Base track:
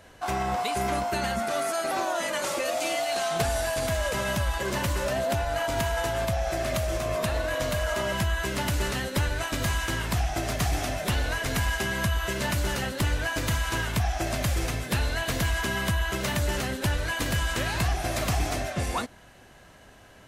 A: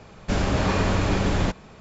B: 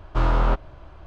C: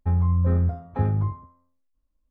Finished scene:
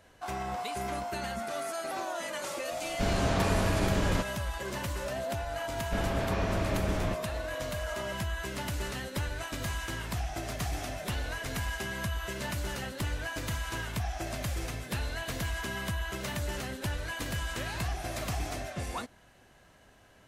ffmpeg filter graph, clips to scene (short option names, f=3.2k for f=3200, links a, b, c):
-filter_complex "[1:a]asplit=2[a][b];[0:a]volume=-7.5dB[c];[b]lowpass=4k[d];[a]atrim=end=1.8,asetpts=PTS-STARTPTS,volume=-6dB,afade=t=in:d=0.004:c=hsin,afade=t=out:st=1.796:d=0.004:c=hsin,adelay=2710[e];[d]atrim=end=1.8,asetpts=PTS-STARTPTS,volume=-9dB,afade=t=in:d=0.004:c=hsin,afade=t=out:st=1.796:d=0.004:c=hsin,adelay=5630[f];[c][e][f]amix=inputs=3:normalize=0"